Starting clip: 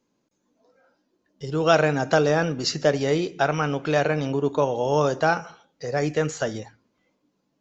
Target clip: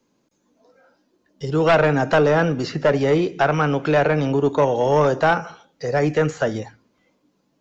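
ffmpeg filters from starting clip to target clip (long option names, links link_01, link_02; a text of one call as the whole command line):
ffmpeg -i in.wav -filter_complex "[0:a]acrossover=split=330|560|2800[link_01][link_02][link_03][link_04];[link_04]acompressor=threshold=-49dB:ratio=4[link_05];[link_01][link_02][link_03][link_05]amix=inputs=4:normalize=0,aeval=exprs='0.562*sin(PI/2*2.24*val(0)/0.562)':channel_layout=same,volume=-5dB" out.wav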